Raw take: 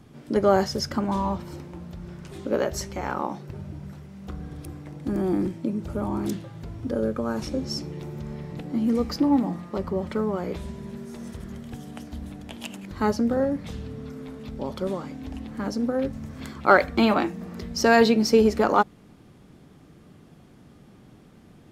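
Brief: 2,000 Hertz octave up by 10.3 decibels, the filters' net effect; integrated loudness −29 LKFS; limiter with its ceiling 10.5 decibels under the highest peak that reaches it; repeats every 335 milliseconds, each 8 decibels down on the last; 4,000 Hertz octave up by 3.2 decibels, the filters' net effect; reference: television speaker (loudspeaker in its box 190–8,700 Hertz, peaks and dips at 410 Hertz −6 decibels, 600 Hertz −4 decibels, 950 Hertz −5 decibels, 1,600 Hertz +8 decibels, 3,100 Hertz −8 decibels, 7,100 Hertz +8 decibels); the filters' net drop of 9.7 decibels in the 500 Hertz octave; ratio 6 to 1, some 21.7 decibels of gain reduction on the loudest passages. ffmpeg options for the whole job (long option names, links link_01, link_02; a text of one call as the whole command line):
ffmpeg -i in.wav -af "equalizer=frequency=500:width_type=o:gain=-7,equalizer=frequency=2000:width_type=o:gain=6.5,equalizer=frequency=4000:width_type=o:gain=4,acompressor=threshold=-35dB:ratio=6,alimiter=level_in=5.5dB:limit=-24dB:level=0:latency=1,volume=-5.5dB,highpass=frequency=190:width=0.5412,highpass=frequency=190:width=1.3066,equalizer=frequency=410:width_type=q:width=4:gain=-6,equalizer=frequency=600:width_type=q:width=4:gain=-4,equalizer=frequency=950:width_type=q:width=4:gain=-5,equalizer=frequency=1600:width_type=q:width=4:gain=8,equalizer=frequency=3100:width_type=q:width=4:gain=-8,equalizer=frequency=7100:width_type=q:width=4:gain=8,lowpass=frequency=8700:width=0.5412,lowpass=frequency=8700:width=1.3066,aecho=1:1:335|670|1005|1340|1675:0.398|0.159|0.0637|0.0255|0.0102,volume=12dB" out.wav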